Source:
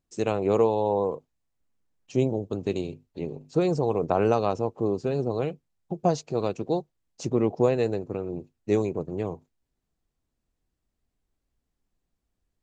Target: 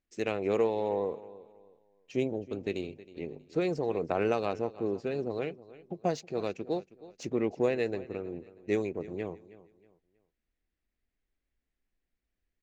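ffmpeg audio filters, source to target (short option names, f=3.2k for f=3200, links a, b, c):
-af "aecho=1:1:318|636|954:0.126|0.039|0.0121,adynamicsmooth=sensitivity=7:basefreq=6.1k,equalizer=f=125:t=o:w=1:g=-8,equalizer=f=1k:t=o:w=1:g=-6,equalizer=f=2k:t=o:w=1:g=9,volume=-4.5dB"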